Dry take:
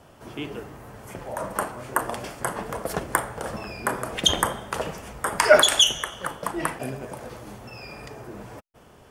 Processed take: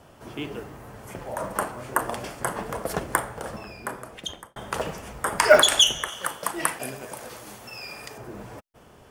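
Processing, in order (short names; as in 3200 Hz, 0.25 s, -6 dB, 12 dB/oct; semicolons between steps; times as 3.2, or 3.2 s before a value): 6.08–8.18 tilt +2.5 dB/oct; short-mantissa float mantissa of 4-bit; 3.06–4.56 fade out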